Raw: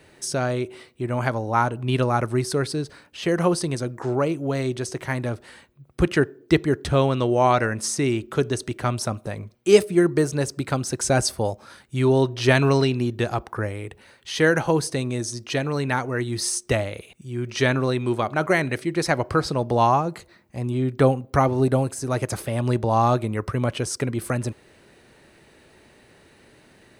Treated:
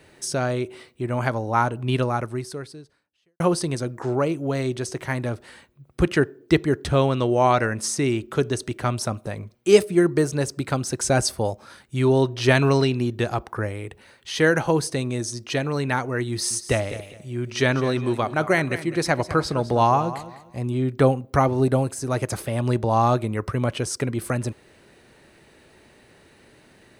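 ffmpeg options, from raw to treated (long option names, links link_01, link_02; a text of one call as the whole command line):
ffmpeg -i in.wav -filter_complex "[0:a]asettb=1/sr,asplit=3[link_01][link_02][link_03];[link_01]atrim=end=16.304[link_04];[link_02]atrim=start=16.3:end=20.61,asetpts=PTS-STARTPTS,afade=type=in:duration=0.004:curve=qsin,afade=type=out:start_time=4.306:duration=0.004:curve=qsin,aecho=1:1:204|408|612:0.2|0.0519|0.0135,atrim=end_sample=190071[link_05];[link_03]atrim=start=20.606[link_06];[link_04][link_05]acrossfade=duration=0.004:curve1=hsin:curve2=qsin[link_07];[link_07][link_06]acrossfade=duration=0.004:curve1=qsin:curve2=hsin,asplit=2[link_08][link_09];[link_08]atrim=end=3.4,asetpts=PTS-STARTPTS,afade=type=out:start_time=1.92:duration=1.48:curve=qua[link_10];[link_09]atrim=start=3.4,asetpts=PTS-STARTPTS,afade=type=in:duration=0.004:curve=hsin[link_11];[link_10][link_11]concat=n=2:v=0:a=1" out.wav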